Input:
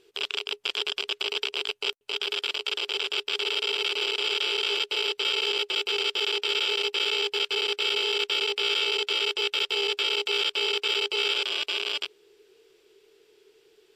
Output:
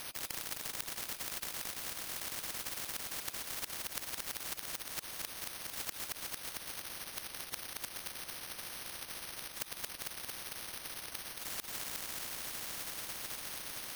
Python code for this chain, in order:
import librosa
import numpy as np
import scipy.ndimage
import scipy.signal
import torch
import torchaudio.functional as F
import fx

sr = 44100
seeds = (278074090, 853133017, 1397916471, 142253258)

p1 = fx.reverse_delay_fb(x, sr, ms=645, feedback_pct=53, wet_db=-13)
p2 = fx.spec_gate(p1, sr, threshold_db=-20, keep='weak')
p3 = fx.peak_eq(p2, sr, hz=1600.0, db=9.0, octaves=0.84)
p4 = fx.level_steps(p3, sr, step_db=19)
p5 = p3 + (p4 * librosa.db_to_amplitude(0.0))
p6 = fx.gate_flip(p5, sr, shuts_db=-24.0, range_db=-33)
p7 = p6 + fx.echo_feedback(p6, sr, ms=225, feedback_pct=52, wet_db=-6.5, dry=0)
p8 = np.repeat(p7[::6], 6)[:len(p7)]
p9 = fx.spectral_comp(p8, sr, ratio=10.0)
y = p9 * librosa.db_to_amplitude(2.0)